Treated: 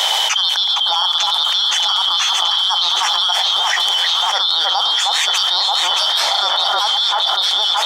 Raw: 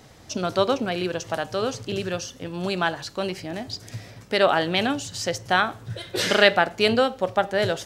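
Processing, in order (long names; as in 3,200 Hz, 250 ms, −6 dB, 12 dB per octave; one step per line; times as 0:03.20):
band-splitting scrambler in four parts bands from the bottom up 2413
automatic gain control
four-pole ladder high-pass 750 Hz, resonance 70%
delay that swaps between a low-pass and a high-pass 312 ms, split 1,700 Hz, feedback 84%, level −6 dB
envelope flattener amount 100%
level +4.5 dB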